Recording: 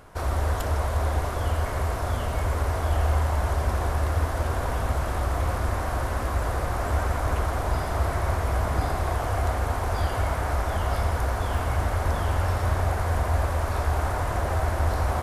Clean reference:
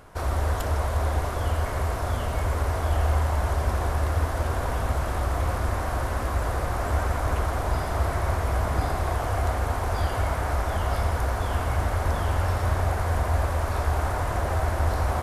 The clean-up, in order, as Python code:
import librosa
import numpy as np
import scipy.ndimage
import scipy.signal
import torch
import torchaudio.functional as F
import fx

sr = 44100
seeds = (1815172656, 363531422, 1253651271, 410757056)

y = fx.fix_declip(x, sr, threshold_db=-14.5)
y = fx.fix_interpolate(y, sr, at_s=(11.58,), length_ms=1.5)